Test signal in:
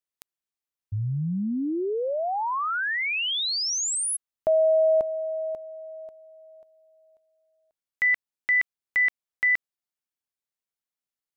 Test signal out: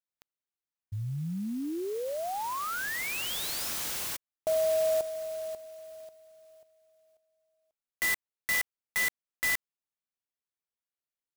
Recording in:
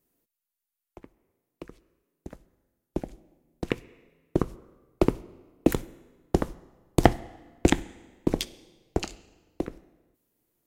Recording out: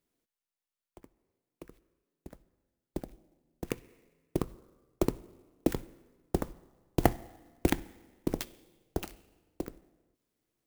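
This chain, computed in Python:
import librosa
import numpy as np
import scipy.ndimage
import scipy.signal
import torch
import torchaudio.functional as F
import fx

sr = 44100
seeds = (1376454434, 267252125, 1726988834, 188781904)

y = fx.clock_jitter(x, sr, seeds[0], jitter_ms=0.05)
y = y * librosa.db_to_amplitude(-6.5)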